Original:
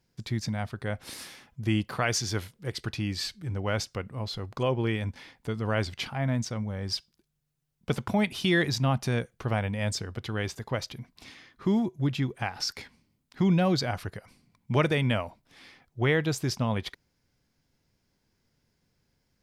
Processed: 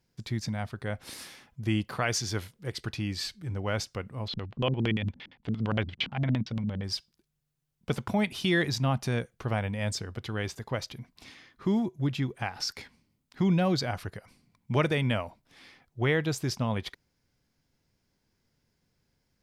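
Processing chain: 4.28–6.84 LFO low-pass square 8.7 Hz 210–3200 Hz; gain -1.5 dB

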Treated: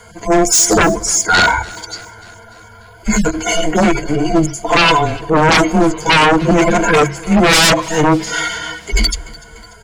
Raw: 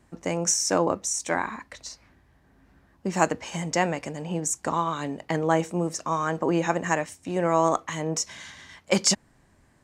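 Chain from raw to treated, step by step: median-filter separation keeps harmonic; notches 60/120/180/240/300 Hz; frequency shift -160 Hz; low shelf 160 Hz -12 dB; in parallel at -1.5 dB: level quantiser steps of 12 dB; on the sum: ripple EQ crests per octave 1.8, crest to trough 15 dB; sine folder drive 20 dB, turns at -4 dBFS; on a send: feedback echo 0.294 s, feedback 60%, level -21.5 dB; on the sum: gain -2.5 dB

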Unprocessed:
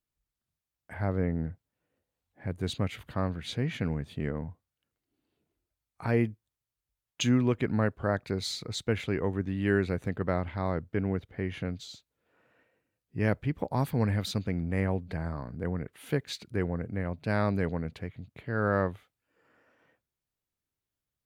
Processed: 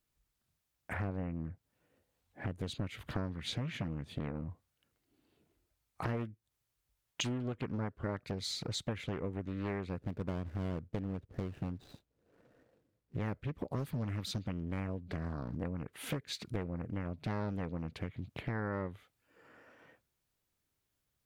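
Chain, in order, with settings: 9.98–13.18 median filter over 41 samples; dynamic EQ 800 Hz, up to -5 dB, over -48 dBFS, Q 2.7; compressor 6:1, threshold -41 dBFS, peak gain reduction 19 dB; Doppler distortion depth 0.89 ms; gain +6 dB

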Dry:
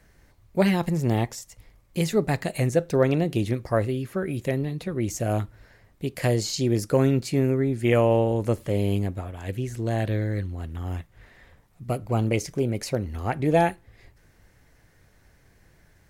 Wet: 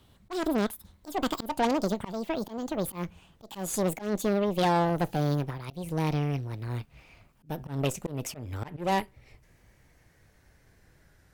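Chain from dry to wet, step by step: speed glide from 191% -> 93%; added harmonics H 5 -20 dB, 8 -19 dB, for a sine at -8.5 dBFS; auto swell 0.173 s; gain -6 dB

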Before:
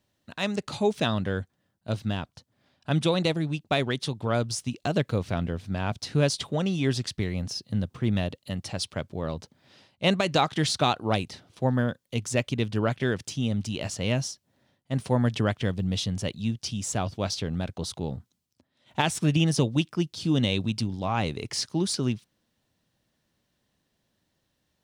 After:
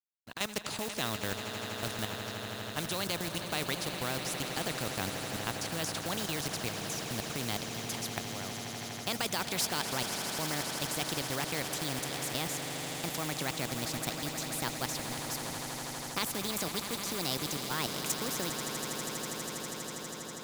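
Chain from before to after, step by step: speed glide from 102% -> 141%; level quantiser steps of 14 dB; companded quantiser 6-bit; on a send: swelling echo 81 ms, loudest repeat 8, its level -17 dB; on the sum: spectral compressor 2:1

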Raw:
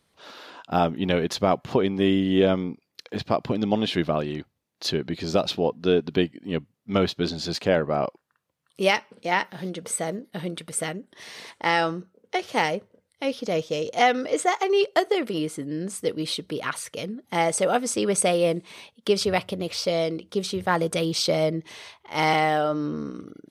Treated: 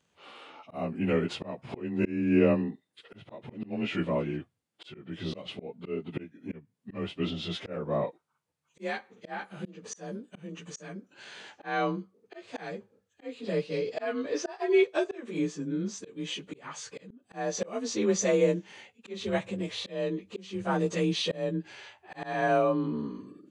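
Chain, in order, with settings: inharmonic rescaling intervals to 91%; harmonic-percussive split harmonic +5 dB; auto swell 0.287 s; gain -5.5 dB

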